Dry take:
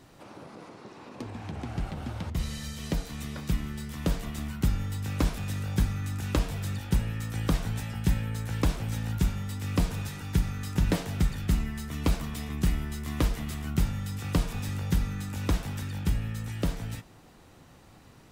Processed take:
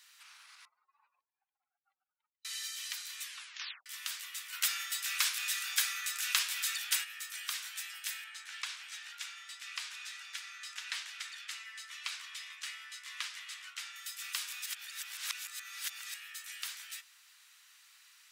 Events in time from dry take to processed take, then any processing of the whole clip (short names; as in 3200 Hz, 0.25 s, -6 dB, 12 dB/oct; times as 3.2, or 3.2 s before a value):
0.65–2.45 spectral contrast raised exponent 3
3.23 tape stop 0.63 s
4.52–7.03 spectral limiter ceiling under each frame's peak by 15 dB
8.24–13.96 air absorption 68 m
14.66–16.14 reverse
whole clip: Bessel high-pass 2300 Hz, order 6; gain +4 dB